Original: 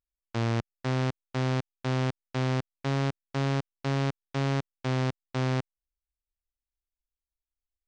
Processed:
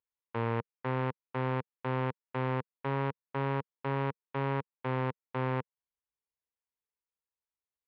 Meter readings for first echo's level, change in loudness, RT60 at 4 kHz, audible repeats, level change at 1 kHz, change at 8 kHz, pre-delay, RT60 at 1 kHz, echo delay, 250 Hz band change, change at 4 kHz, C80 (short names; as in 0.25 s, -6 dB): none, -4.0 dB, none, none, +1.0 dB, n/a, none, none, none, -5.5 dB, -12.0 dB, none